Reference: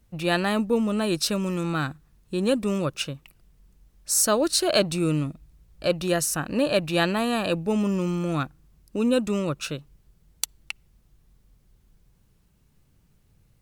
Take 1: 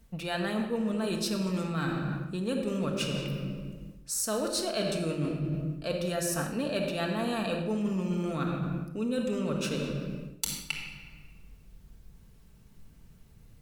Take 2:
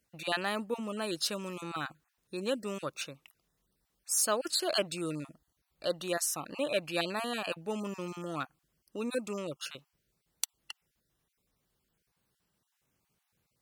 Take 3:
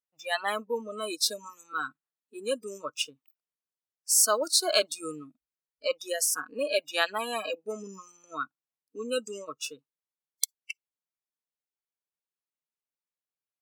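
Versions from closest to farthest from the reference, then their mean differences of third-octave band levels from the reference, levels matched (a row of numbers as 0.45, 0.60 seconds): 2, 1, 3; 4.0, 7.0, 11.0 decibels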